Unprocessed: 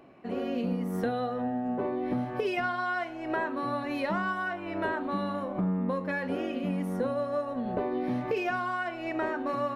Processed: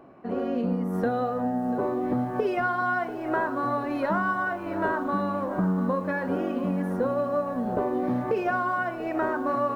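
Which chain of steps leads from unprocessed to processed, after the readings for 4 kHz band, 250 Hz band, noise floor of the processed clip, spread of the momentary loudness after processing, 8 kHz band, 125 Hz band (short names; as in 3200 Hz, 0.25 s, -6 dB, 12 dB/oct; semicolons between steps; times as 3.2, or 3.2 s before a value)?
-4.5 dB, +4.0 dB, -34 dBFS, 3 LU, n/a, +3.5 dB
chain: resonant high shelf 1800 Hz -7 dB, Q 1.5; lo-fi delay 0.69 s, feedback 55%, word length 9-bit, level -14 dB; gain +3.5 dB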